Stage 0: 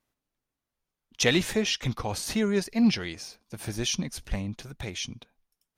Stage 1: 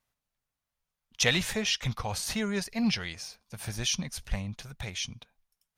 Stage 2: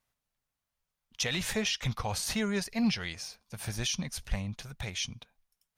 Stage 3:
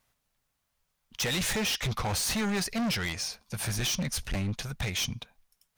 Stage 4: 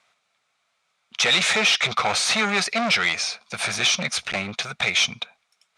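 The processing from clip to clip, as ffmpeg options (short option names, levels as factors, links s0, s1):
-af "equalizer=f=320:t=o:w=1:g=-12"
-af "alimiter=limit=0.1:level=0:latency=1:release=103"
-af "asoftclip=type=hard:threshold=0.0178,volume=2.51"
-af "highpass=250,equalizer=f=290:t=q:w=4:g=-9,equalizer=f=690:t=q:w=4:g=6,equalizer=f=1300:t=q:w=4:g=9,equalizer=f=2300:t=q:w=4:g=10,equalizer=f=3700:t=q:w=4:g=7,lowpass=f=8500:w=0.5412,lowpass=f=8500:w=1.3066,volume=2.11"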